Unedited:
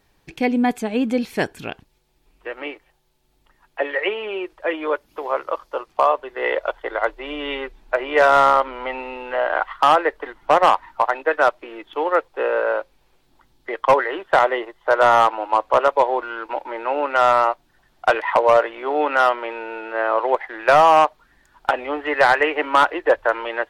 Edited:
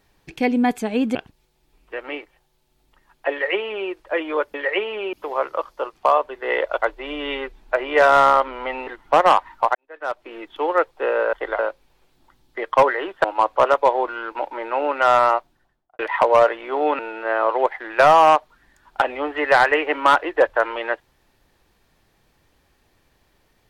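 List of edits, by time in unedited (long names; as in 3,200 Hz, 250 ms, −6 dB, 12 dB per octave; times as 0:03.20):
0:01.15–0:01.68: remove
0:03.84–0:04.43: duplicate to 0:05.07
0:06.76–0:07.02: move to 0:12.70
0:09.07–0:10.24: remove
0:11.12–0:11.71: fade in quadratic
0:14.35–0:15.38: remove
0:17.48–0:18.13: fade out and dull
0:19.13–0:19.68: remove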